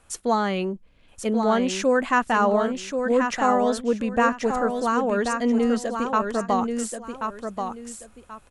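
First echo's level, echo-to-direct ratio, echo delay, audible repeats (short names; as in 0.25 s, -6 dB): -6.0 dB, -5.5 dB, 1.083 s, 2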